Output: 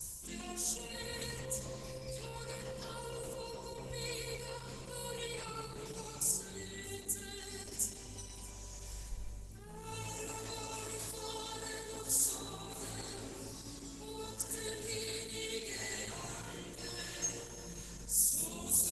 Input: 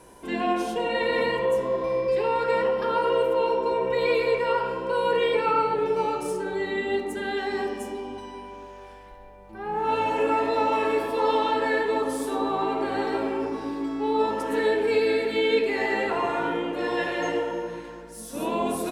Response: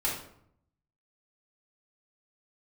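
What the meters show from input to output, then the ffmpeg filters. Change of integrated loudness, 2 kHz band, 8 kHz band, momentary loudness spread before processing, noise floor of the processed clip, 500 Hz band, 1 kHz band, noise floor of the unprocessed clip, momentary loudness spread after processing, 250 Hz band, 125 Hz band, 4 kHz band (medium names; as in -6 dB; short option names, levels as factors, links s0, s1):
-14.0 dB, -18.0 dB, +11.0 dB, 10 LU, -49 dBFS, -22.5 dB, -23.5 dB, -43 dBFS, 13 LU, -18.5 dB, -3.5 dB, -8.0 dB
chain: -af "adynamicequalizer=threshold=0.00398:dfrequency=2700:dqfactor=4.6:tfrequency=2700:tqfactor=4.6:attack=5:release=100:ratio=0.375:range=1.5:mode=cutabove:tftype=bell,areverse,acompressor=mode=upward:threshold=0.0398:ratio=2.5,areverse,firequalizer=gain_entry='entry(110,0);entry(270,-22);entry(840,-24);entry(2700,-13);entry(6700,12)':delay=0.05:min_phase=1,aecho=1:1:629|1258|1887|2516:0.119|0.0535|0.0241|0.0108,volume=1.12" -ar 48000 -c:a libopus -b:a 12k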